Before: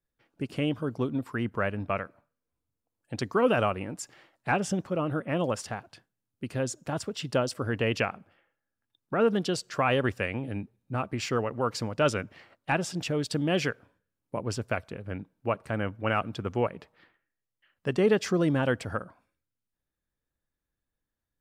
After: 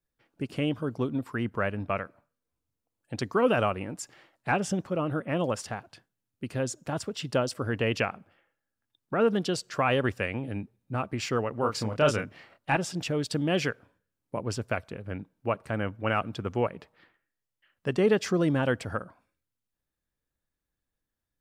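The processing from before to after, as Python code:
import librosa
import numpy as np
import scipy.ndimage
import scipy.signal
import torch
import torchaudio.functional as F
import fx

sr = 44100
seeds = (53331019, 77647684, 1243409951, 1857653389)

y = fx.doubler(x, sr, ms=28.0, db=-5, at=(11.6, 12.77))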